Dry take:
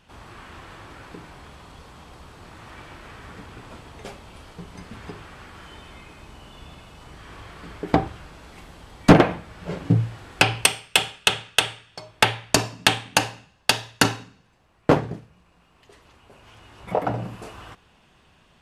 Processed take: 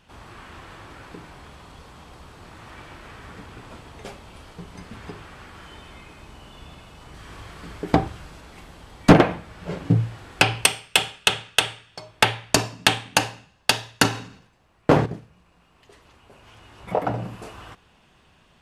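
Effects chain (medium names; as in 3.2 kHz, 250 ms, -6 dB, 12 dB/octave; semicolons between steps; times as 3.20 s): 7.14–8.41 s: tone controls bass +2 dB, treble +4 dB; 14.08–15.06 s: decay stretcher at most 83 dB/s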